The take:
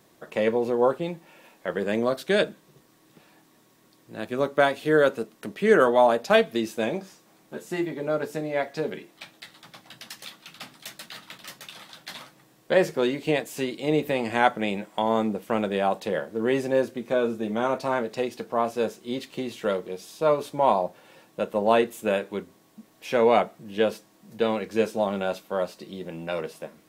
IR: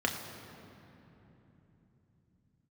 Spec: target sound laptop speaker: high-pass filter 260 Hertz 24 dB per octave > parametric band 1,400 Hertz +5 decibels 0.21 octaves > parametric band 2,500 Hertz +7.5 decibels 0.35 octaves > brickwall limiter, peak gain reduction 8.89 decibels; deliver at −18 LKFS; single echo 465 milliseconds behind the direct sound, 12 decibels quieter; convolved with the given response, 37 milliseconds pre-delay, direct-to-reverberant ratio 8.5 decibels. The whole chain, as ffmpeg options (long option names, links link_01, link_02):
-filter_complex "[0:a]aecho=1:1:465:0.251,asplit=2[link_01][link_02];[1:a]atrim=start_sample=2205,adelay=37[link_03];[link_02][link_03]afir=irnorm=-1:irlink=0,volume=-17dB[link_04];[link_01][link_04]amix=inputs=2:normalize=0,highpass=frequency=260:width=0.5412,highpass=frequency=260:width=1.3066,equalizer=frequency=1400:width_type=o:width=0.21:gain=5,equalizer=frequency=2500:width_type=o:width=0.35:gain=7.5,volume=8.5dB,alimiter=limit=-5dB:level=0:latency=1"